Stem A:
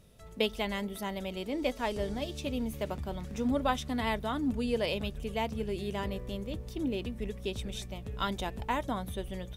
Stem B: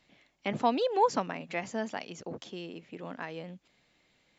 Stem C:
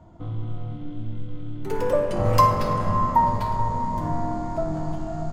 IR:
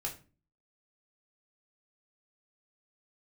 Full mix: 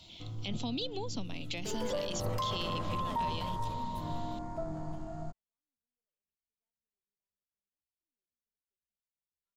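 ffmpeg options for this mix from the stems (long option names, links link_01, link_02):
-filter_complex "[0:a]aeval=exprs='(tanh(39.8*val(0)+0.7)-tanh(0.7))/39.8':channel_layout=same,crystalizer=i=1:c=0,adelay=1250,volume=-9dB[link_01];[1:a]acrossover=split=290[link_02][link_03];[link_03]acompressor=threshold=-42dB:ratio=6[link_04];[link_02][link_04]amix=inputs=2:normalize=0,highshelf=frequency=2400:width_type=q:width=3:gain=13,volume=-1dB,asplit=2[link_05][link_06];[2:a]volume=-11.5dB[link_07];[link_06]apad=whole_len=477102[link_08];[link_01][link_08]sidechaingate=range=-58dB:threshold=-55dB:ratio=16:detection=peak[link_09];[link_09][link_05][link_07]amix=inputs=3:normalize=0,alimiter=level_in=1.5dB:limit=-24dB:level=0:latency=1:release=20,volume=-1.5dB"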